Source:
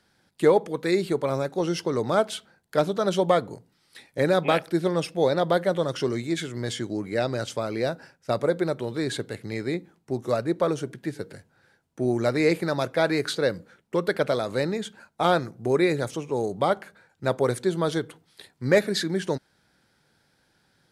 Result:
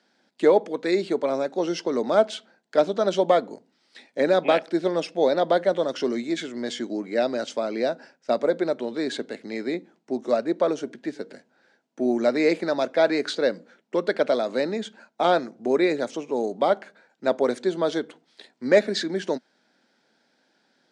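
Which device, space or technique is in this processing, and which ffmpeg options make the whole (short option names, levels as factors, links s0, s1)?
television speaker: -af "highpass=f=220:w=0.5412,highpass=f=220:w=1.3066,equalizer=f=240:t=q:w=4:g=6,equalizer=f=640:t=q:w=4:g=5,equalizer=f=1200:t=q:w=4:g=-3,lowpass=f=7100:w=0.5412,lowpass=f=7100:w=1.3066"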